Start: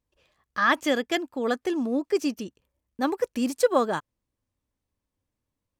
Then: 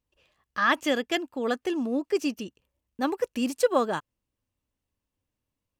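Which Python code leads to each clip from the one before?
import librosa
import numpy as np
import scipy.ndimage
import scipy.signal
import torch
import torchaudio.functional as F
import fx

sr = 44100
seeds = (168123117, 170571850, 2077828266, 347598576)

y = fx.peak_eq(x, sr, hz=2800.0, db=6.5, octaves=0.22)
y = y * 10.0 ** (-1.5 / 20.0)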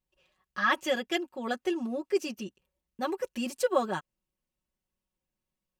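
y = x + 0.98 * np.pad(x, (int(5.4 * sr / 1000.0), 0))[:len(x)]
y = y * 10.0 ** (-6.0 / 20.0)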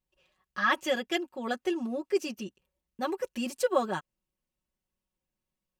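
y = x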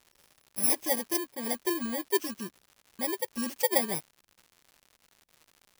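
y = fx.bit_reversed(x, sr, seeds[0], block=32)
y = fx.dmg_crackle(y, sr, seeds[1], per_s=180.0, level_db=-44.0)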